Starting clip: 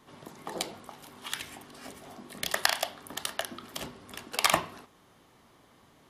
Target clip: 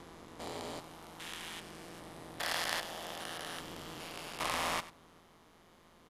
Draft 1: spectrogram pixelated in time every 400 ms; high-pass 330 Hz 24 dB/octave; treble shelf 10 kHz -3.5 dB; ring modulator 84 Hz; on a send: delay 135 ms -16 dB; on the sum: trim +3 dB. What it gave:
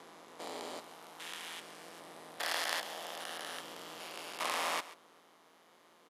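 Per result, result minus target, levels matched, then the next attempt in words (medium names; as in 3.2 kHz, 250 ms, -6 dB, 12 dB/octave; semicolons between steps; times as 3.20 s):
echo 40 ms late; 250 Hz band -5.0 dB
spectrogram pixelated in time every 400 ms; high-pass 330 Hz 24 dB/octave; treble shelf 10 kHz -3.5 dB; ring modulator 84 Hz; on a send: delay 95 ms -16 dB; on the sum: trim +3 dB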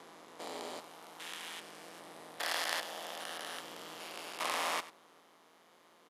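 250 Hz band -5.0 dB
spectrogram pixelated in time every 400 ms; treble shelf 10 kHz -3.5 dB; ring modulator 84 Hz; on a send: delay 95 ms -16 dB; on the sum: trim +3 dB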